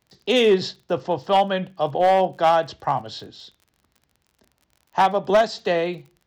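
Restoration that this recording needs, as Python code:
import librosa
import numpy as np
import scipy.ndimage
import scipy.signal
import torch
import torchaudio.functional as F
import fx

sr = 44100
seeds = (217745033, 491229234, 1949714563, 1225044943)

y = fx.fix_declip(x, sr, threshold_db=-10.5)
y = fx.fix_declick_ar(y, sr, threshold=6.5)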